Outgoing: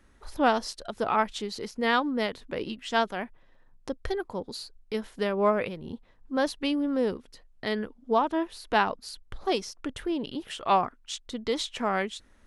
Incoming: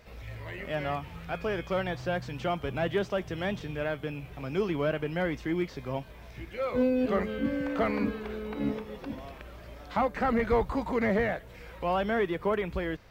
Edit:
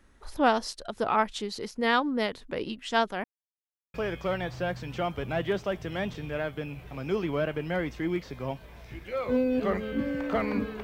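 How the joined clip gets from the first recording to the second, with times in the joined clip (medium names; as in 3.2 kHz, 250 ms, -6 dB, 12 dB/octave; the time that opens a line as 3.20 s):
outgoing
3.24–3.94 s: mute
3.94 s: go over to incoming from 1.40 s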